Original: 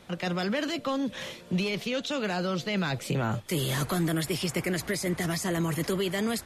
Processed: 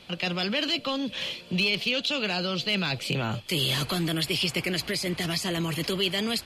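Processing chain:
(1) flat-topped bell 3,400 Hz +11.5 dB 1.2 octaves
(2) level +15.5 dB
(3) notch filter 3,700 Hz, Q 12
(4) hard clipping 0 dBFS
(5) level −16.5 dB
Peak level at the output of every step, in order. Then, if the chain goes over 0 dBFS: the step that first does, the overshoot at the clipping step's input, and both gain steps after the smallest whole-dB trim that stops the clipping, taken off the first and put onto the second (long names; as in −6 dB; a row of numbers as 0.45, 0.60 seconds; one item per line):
−10.5, +5.0, +4.0, 0.0, −16.5 dBFS
step 2, 4.0 dB
step 2 +11.5 dB, step 5 −12.5 dB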